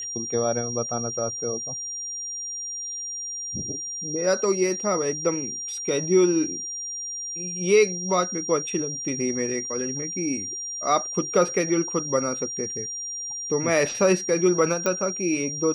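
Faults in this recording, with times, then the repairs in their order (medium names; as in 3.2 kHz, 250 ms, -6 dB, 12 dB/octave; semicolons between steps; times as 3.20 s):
whine 5.7 kHz -30 dBFS
14.86 s: pop -11 dBFS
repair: de-click; band-stop 5.7 kHz, Q 30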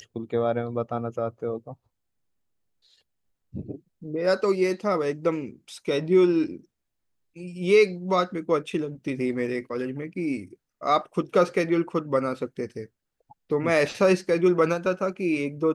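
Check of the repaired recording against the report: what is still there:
nothing left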